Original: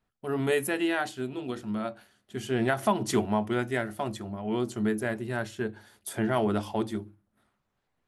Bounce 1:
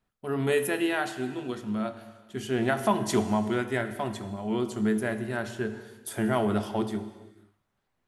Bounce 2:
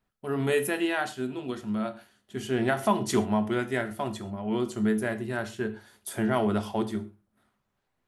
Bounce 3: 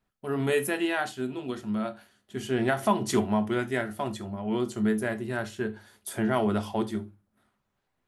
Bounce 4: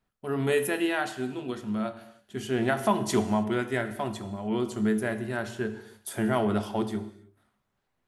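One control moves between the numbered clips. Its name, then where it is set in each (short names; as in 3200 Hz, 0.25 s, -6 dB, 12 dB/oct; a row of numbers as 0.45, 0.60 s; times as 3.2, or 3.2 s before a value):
non-linear reverb, gate: 0.52, 0.15, 0.1, 0.34 s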